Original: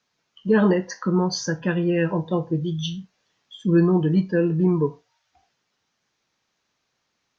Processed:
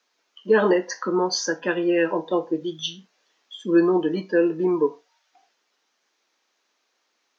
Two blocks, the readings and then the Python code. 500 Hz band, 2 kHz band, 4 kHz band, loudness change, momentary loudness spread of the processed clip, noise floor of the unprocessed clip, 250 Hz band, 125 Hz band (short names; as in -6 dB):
+2.5 dB, +3.0 dB, +3.0 dB, -0.5 dB, 11 LU, -75 dBFS, -2.0 dB, -14.5 dB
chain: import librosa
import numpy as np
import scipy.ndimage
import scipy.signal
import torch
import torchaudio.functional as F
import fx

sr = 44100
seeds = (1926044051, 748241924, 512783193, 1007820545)

y = scipy.signal.sosfilt(scipy.signal.butter(4, 290.0, 'highpass', fs=sr, output='sos'), x)
y = y * 10.0 ** (3.0 / 20.0)